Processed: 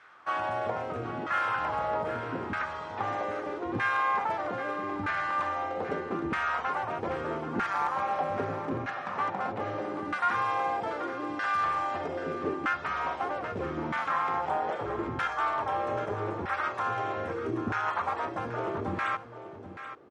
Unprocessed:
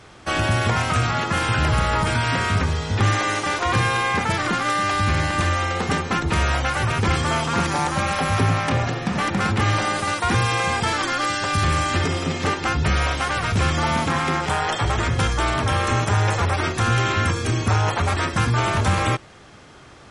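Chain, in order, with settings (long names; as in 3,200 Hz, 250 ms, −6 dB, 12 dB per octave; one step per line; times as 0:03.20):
auto-filter band-pass saw down 0.79 Hz 290–1,600 Hz
single-tap delay 782 ms −11.5 dB
level −1.5 dB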